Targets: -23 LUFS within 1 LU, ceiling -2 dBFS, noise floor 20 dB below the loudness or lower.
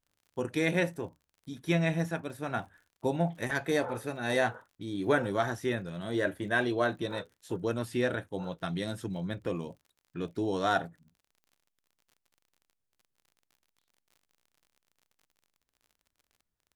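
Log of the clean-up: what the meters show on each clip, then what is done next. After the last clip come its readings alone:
tick rate 46 per s; loudness -32.0 LUFS; peak level -13.0 dBFS; loudness target -23.0 LUFS
-> de-click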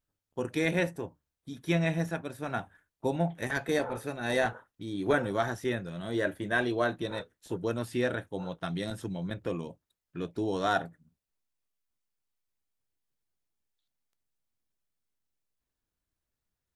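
tick rate 0.12 per s; loudness -32.0 LUFS; peak level -13.0 dBFS; loudness target -23.0 LUFS
-> trim +9 dB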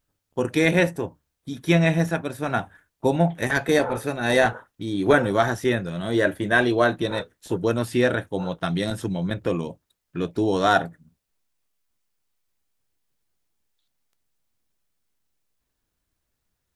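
loudness -23.0 LUFS; peak level -4.0 dBFS; noise floor -79 dBFS

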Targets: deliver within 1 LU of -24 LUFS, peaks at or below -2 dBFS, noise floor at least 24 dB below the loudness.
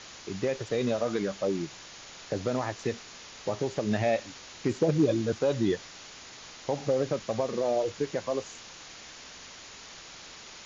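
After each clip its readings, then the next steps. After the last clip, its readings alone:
noise floor -47 dBFS; noise floor target -54 dBFS; loudness -30.0 LUFS; peak level -14.0 dBFS; loudness target -24.0 LUFS
-> noise reduction 7 dB, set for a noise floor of -47 dBFS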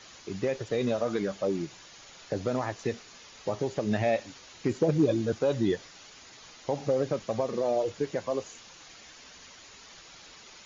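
noise floor -51 dBFS; noise floor target -54 dBFS
-> noise reduction 6 dB, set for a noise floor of -51 dBFS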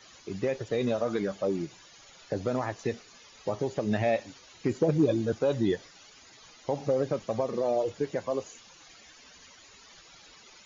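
noise floor -54 dBFS; loudness -30.0 LUFS; peak level -14.0 dBFS; loudness target -24.0 LUFS
-> trim +6 dB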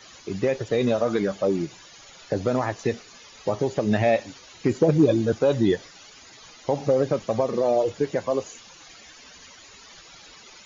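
loudness -24.0 LUFS; peak level -8.0 dBFS; noise floor -48 dBFS

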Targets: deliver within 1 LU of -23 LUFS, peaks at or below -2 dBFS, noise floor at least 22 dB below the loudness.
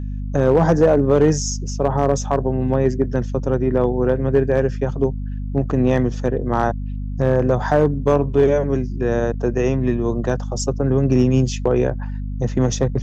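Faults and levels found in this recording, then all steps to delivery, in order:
clipped samples 0.8%; clipping level -7.0 dBFS; hum 50 Hz; highest harmonic 250 Hz; hum level -23 dBFS; loudness -19.5 LUFS; peak level -7.0 dBFS; loudness target -23.0 LUFS
-> clip repair -7 dBFS; de-hum 50 Hz, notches 5; trim -3.5 dB

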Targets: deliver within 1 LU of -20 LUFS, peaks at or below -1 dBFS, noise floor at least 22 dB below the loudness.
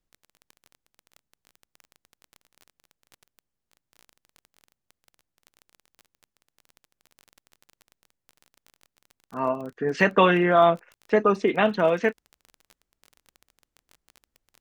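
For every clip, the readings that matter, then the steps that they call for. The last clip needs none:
tick rate 22 per s; loudness -22.0 LUFS; peak level -5.5 dBFS; loudness target -20.0 LUFS
-> de-click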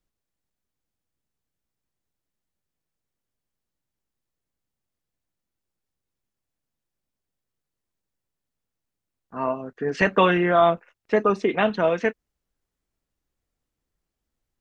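tick rate 0 per s; loudness -22.0 LUFS; peak level -5.5 dBFS; loudness target -20.0 LUFS
-> trim +2 dB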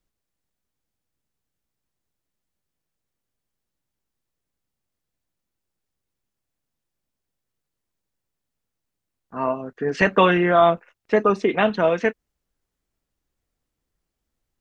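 loudness -20.0 LUFS; peak level -3.5 dBFS; noise floor -83 dBFS

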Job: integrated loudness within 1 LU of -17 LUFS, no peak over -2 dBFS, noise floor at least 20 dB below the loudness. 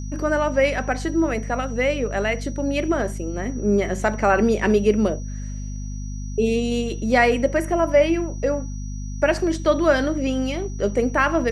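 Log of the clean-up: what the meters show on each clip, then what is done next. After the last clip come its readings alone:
hum 50 Hz; highest harmonic 250 Hz; hum level -27 dBFS; steady tone 5.8 kHz; tone level -44 dBFS; loudness -21.5 LUFS; peak level -4.5 dBFS; loudness target -17.0 LUFS
-> hum notches 50/100/150/200/250 Hz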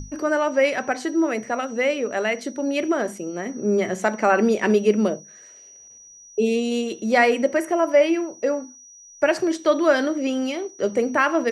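hum not found; steady tone 5.8 kHz; tone level -44 dBFS
-> band-stop 5.8 kHz, Q 30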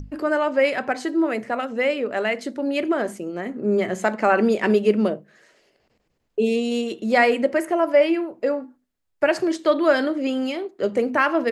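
steady tone not found; loudness -22.0 LUFS; peak level -5.5 dBFS; loudness target -17.0 LUFS
-> trim +5 dB; peak limiter -2 dBFS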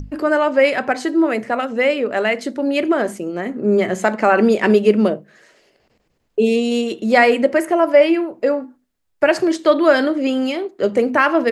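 loudness -17.0 LUFS; peak level -2.0 dBFS; noise floor -67 dBFS

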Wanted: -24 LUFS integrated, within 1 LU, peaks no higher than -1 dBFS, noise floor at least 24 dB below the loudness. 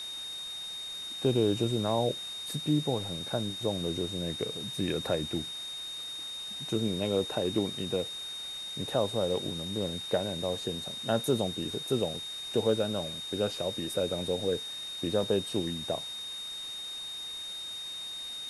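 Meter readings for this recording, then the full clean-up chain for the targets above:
steady tone 3.7 kHz; tone level -37 dBFS; noise floor -40 dBFS; noise floor target -56 dBFS; loudness -32.0 LUFS; peak level -14.5 dBFS; loudness target -24.0 LUFS
-> band-stop 3.7 kHz, Q 30; noise reduction 16 dB, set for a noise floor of -40 dBFS; trim +8 dB

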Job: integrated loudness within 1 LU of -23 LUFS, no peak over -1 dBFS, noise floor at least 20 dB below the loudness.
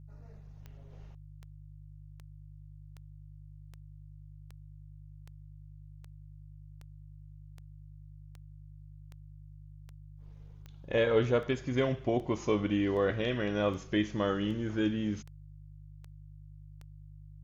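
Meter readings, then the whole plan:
clicks found 22; hum 50 Hz; highest harmonic 150 Hz; hum level -47 dBFS; loudness -31.0 LUFS; peak level -15.5 dBFS; loudness target -23.0 LUFS
-> de-click; de-hum 50 Hz, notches 3; trim +8 dB

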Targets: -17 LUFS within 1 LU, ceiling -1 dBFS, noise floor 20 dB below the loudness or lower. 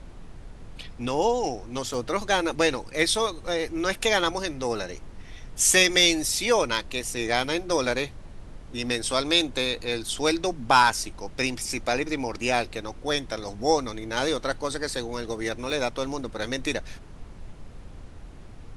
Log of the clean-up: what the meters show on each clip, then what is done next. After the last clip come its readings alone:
dropouts 2; longest dropout 1.6 ms; noise floor -44 dBFS; noise floor target -45 dBFS; loudness -25.0 LUFS; peak level -5.0 dBFS; loudness target -17.0 LUFS
-> interpolate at 1.94/15.70 s, 1.6 ms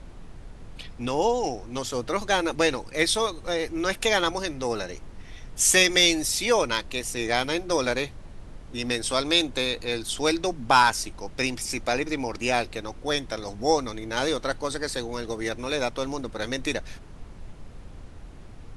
dropouts 0; noise floor -44 dBFS; noise floor target -45 dBFS
-> noise print and reduce 6 dB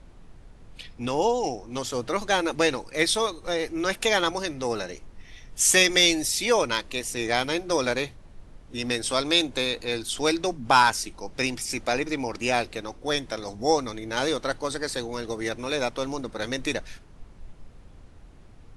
noise floor -49 dBFS; loudness -25.0 LUFS; peak level -5.0 dBFS; loudness target -17.0 LUFS
-> trim +8 dB; peak limiter -1 dBFS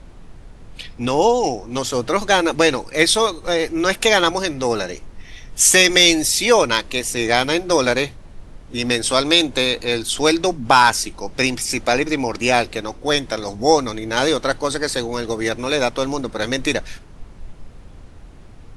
loudness -17.5 LUFS; peak level -1.0 dBFS; noise floor -41 dBFS

